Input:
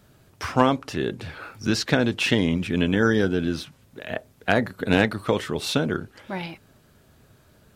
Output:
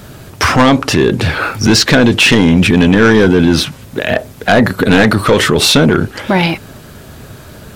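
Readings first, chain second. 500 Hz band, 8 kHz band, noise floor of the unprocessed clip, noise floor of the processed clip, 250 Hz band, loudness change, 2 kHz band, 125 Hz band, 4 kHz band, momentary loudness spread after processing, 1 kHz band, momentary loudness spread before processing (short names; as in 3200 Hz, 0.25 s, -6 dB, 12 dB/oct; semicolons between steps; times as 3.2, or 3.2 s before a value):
+12.5 dB, +18.0 dB, -58 dBFS, -35 dBFS, +14.0 dB, +13.5 dB, +14.0 dB, +14.0 dB, +16.0 dB, 9 LU, +12.5 dB, 14 LU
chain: soft clip -18 dBFS, distortion -8 dB; maximiser +23.5 dB; gain -1 dB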